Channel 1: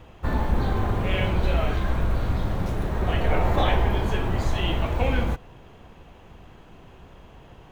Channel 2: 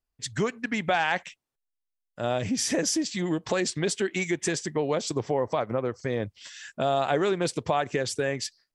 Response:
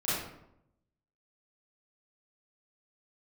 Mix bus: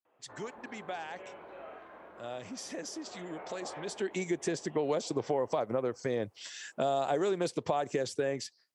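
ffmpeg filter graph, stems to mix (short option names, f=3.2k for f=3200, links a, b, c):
-filter_complex "[0:a]acrossover=split=290 2300:gain=0.0794 1 0.0794[a][b][c];[a][b][c]amix=inputs=3:normalize=0,adelay=50,volume=-19dB,asplit=3[d][e][f];[e]volume=-13.5dB[g];[f]volume=-17dB[h];[1:a]afade=t=in:st=3.83:d=0.42:silence=0.223872,asplit=2[i][j];[j]apad=whole_len=342409[k];[d][k]sidechaincompress=threshold=-37dB:ratio=8:attack=49:release=190[l];[2:a]atrim=start_sample=2205[m];[g][m]afir=irnorm=-1:irlink=0[n];[h]aecho=0:1:775:1[o];[l][i][n][o]amix=inputs=4:normalize=0,highpass=100,bass=f=250:g=-6,treble=f=4k:g=3,acrossover=split=920|5600[p][q][r];[p]acompressor=threshold=-27dB:ratio=4[s];[q]acompressor=threshold=-44dB:ratio=4[t];[r]acompressor=threshold=-50dB:ratio=4[u];[s][t][u]amix=inputs=3:normalize=0"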